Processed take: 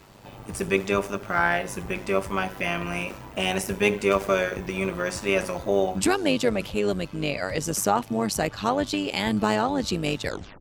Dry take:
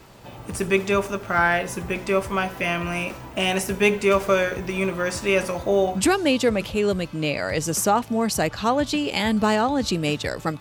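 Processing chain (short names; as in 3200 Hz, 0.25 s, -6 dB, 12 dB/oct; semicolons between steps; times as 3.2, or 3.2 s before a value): tape stop at the end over 0.32 s; AM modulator 100 Hz, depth 50%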